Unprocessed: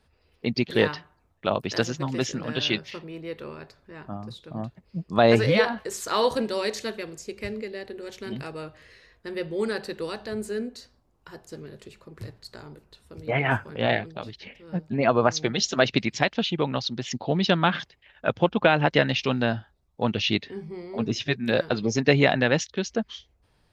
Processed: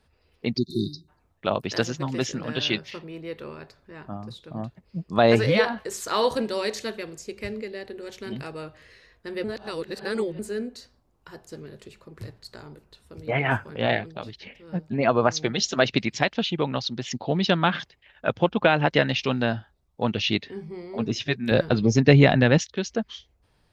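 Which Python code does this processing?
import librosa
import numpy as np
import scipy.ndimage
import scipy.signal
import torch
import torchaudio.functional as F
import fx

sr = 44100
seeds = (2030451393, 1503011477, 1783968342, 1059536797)

y = fx.spec_erase(x, sr, start_s=0.58, length_s=0.51, low_hz=400.0, high_hz=3600.0)
y = fx.low_shelf(y, sr, hz=240.0, db=11.0, at=(21.51, 22.58))
y = fx.edit(y, sr, fx.reverse_span(start_s=9.44, length_s=0.95), tone=tone)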